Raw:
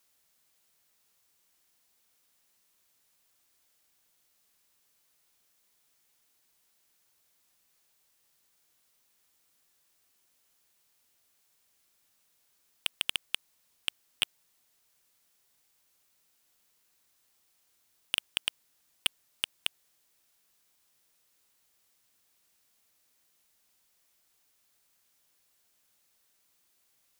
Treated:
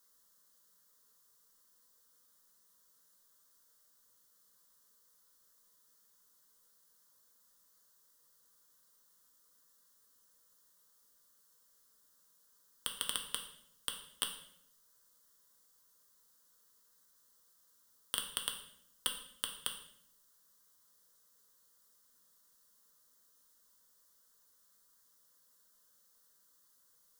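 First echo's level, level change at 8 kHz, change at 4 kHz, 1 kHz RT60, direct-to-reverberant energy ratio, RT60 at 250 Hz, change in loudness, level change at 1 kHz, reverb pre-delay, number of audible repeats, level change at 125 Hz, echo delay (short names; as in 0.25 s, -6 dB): none, +2.0 dB, -6.0 dB, 0.60 s, 3.0 dB, 0.95 s, -5.0 dB, +2.0 dB, 3 ms, none, -2.0 dB, none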